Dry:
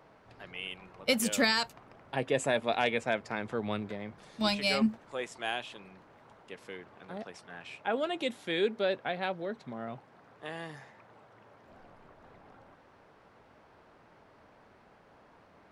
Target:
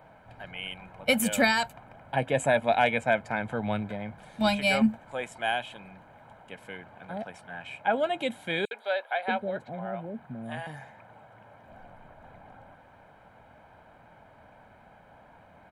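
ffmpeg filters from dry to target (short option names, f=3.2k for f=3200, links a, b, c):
-filter_complex "[0:a]equalizer=f=5.2k:t=o:w=0.78:g=-12.5,bandreject=f=1.4k:w=26,aecho=1:1:1.3:0.6,asettb=1/sr,asplit=3[a][b][c];[a]atrim=end=8.654[d];[b]atrim=start=8.65:end=10.67,asetpts=PTS-STARTPTS,afade=t=in:d=0.004:c=qsin,afade=t=out:st=2.016:d=0.004:c=qsin,acrossover=split=510|5900[e][f][g];[f]adelay=60[h];[e]adelay=630[i];[i][h][g]amix=inputs=3:normalize=0,atrim=end_sample=89082[j];[c]atrim=start=10.666[k];[d][j]acrossfade=d=0.004:c1=hsin:c2=qsin[l];[l][k]acrossfade=d=0.004:c1=qsin:c2=hsin,volume=4dB"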